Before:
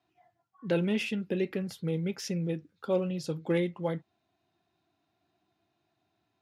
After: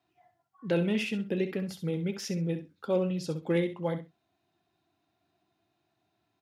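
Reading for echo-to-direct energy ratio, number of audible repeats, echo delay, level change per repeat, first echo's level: -11.0 dB, 2, 65 ms, -16.0 dB, -11.0 dB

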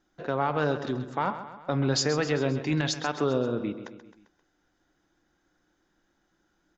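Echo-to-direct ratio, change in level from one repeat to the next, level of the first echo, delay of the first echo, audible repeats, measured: -10.5 dB, -5.0 dB, -12.0 dB, 0.132 s, 4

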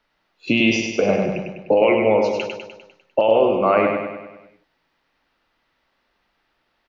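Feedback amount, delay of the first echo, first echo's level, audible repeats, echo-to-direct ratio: 55%, 0.1 s, -4.5 dB, 6, -3.0 dB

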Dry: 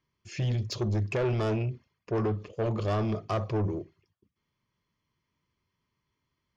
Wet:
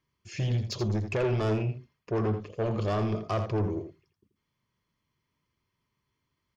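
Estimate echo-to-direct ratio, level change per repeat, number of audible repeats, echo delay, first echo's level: -9.0 dB, no steady repeat, 1, 83 ms, -9.0 dB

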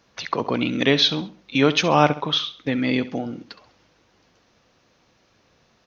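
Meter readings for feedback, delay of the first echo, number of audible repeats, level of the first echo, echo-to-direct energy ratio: 38%, 67 ms, 3, -15.5 dB, -15.0 dB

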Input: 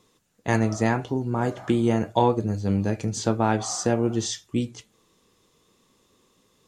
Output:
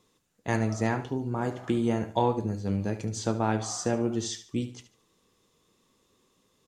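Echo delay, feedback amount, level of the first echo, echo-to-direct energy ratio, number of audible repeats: 73 ms, 32%, -12.5 dB, -12.0 dB, 3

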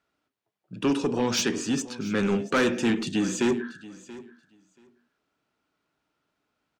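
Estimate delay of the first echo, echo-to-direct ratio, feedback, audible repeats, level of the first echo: 0.681 s, -18.5 dB, 15%, 2, -18.5 dB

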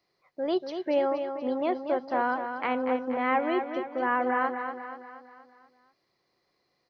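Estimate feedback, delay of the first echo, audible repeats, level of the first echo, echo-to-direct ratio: 50%, 0.239 s, 5, -7.5 dB, -6.0 dB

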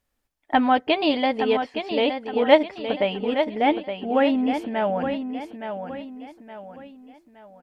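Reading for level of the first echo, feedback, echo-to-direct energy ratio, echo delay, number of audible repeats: -8.0 dB, 39%, -7.5 dB, 0.868 s, 4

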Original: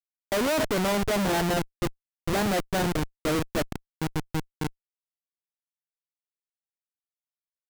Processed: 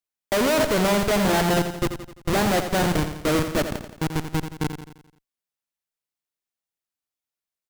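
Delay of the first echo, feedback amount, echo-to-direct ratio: 86 ms, 51%, -7.5 dB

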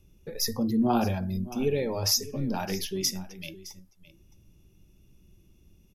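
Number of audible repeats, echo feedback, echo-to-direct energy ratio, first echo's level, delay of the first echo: 1, no steady repeat, -17.0 dB, -17.0 dB, 0.614 s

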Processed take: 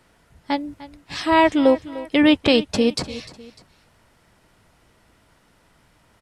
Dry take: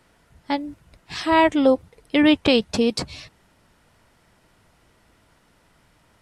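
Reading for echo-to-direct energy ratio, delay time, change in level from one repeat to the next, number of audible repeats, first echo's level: -16.0 dB, 0.3 s, -7.0 dB, 2, -17.0 dB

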